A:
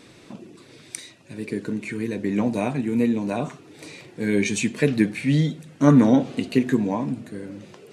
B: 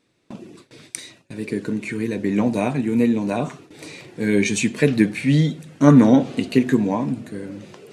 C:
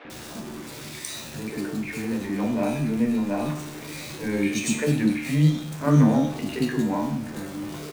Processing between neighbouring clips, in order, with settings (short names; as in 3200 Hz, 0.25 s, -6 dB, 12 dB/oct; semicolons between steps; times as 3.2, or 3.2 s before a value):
gate with hold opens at -37 dBFS; gain +3 dB
zero-crossing step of -27 dBFS; resonator 75 Hz, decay 0.66 s, harmonics all, mix 80%; three bands offset in time mids, lows, highs 50/100 ms, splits 410/2600 Hz; gain +4 dB